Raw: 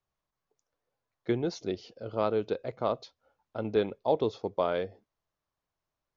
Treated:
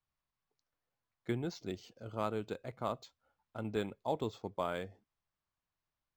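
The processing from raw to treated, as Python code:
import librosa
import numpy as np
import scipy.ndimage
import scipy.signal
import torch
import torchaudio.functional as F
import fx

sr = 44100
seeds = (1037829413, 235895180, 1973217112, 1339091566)

y = fx.peak_eq(x, sr, hz=480.0, db=-8.5, octaves=1.3)
y = np.interp(np.arange(len(y)), np.arange(len(y))[::4], y[::4])
y = y * librosa.db_to_amplitude(-2.5)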